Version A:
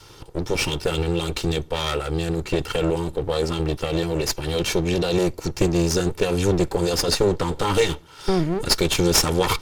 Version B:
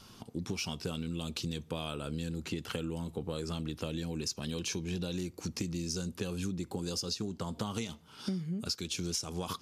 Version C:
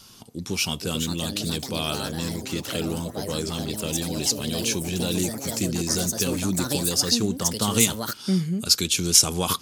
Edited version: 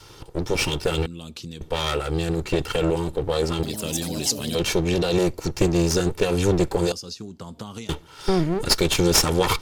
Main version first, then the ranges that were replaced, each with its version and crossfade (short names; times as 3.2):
A
1.06–1.61 from B
3.63–4.55 from C
6.92–7.89 from B